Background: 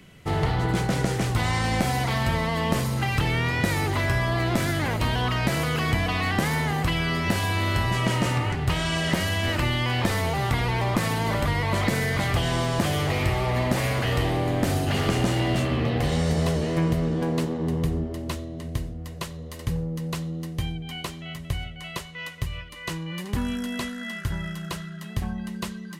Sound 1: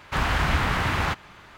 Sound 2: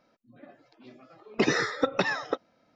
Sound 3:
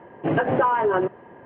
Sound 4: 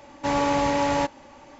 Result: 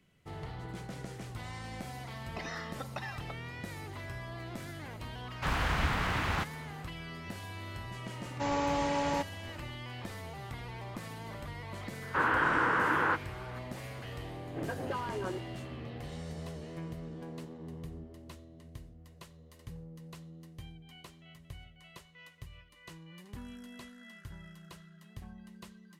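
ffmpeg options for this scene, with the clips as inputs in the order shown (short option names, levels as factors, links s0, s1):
-filter_complex "[1:a]asplit=2[s0][s1];[0:a]volume=0.119[s2];[2:a]lowshelf=f=560:t=q:w=3:g=-6[s3];[s1]highpass=260,equalizer=f=320:t=q:w=4:g=9,equalizer=f=480:t=q:w=4:g=9,equalizer=f=680:t=q:w=4:g=-6,equalizer=f=1000:t=q:w=4:g=6,equalizer=f=1500:t=q:w=4:g=9,equalizer=f=2300:t=q:w=4:g=-6,lowpass=f=2500:w=0.5412,lowpass=f=2500:w=1.3066[s4];[3:a]equalizer=f=780:w=1.5:g=-3.5[s5];[s3]atrim=end=2.75,asetpts=PTS-STARTPTS,volume=0.178,afade=t=in:d=0.004:c=hsin,afade=t=out:st=2.746:d=0.004:c=hsin,adelay=970[s6];[s0]atrim=end=1.57,asetpts=PTS-STARTPTS,volume=0.422,afade=t=in:d=0.004:c=hsin,afade=t=out:st=1.566:d=0.004:c=hsin,adelay=5300[s7];[4:a]atrim=end=1.59,asetpts=PTS-STARTPTS,volume=0.376,afade=t=in:d=0.004:c=hsin,afade=t=out:st=1.586:d=0.004:c=hsin,adelay=8160[s8];[s4]atrim=end=1.57,asetpts=PTS-STARTPTS,volume=0.501,afade=t=in:d=0.004:c=hsin,afade=t=out:st=1.566:d=0.004:c=hsin,adelay=12020[s9];[s5]atrim=end=1.45,asetpts=PTS-STARTPTS,volume=0.168,afade=t=in:d=0.004:c=hsin,afade=t=out:st=1.446:d=0.004:c=hsin,adelay=14310[s10];[s2][s6][s7][s8][s9][s10]amix=inputs=6:normalize=0"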